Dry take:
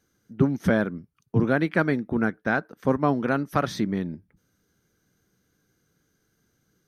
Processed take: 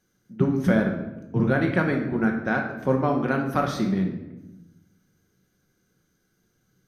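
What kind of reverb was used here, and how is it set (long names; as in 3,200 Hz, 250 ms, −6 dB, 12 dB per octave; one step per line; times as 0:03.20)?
rectangular room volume 390 cubic metres, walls mixed, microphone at 1 metre
level −2 dB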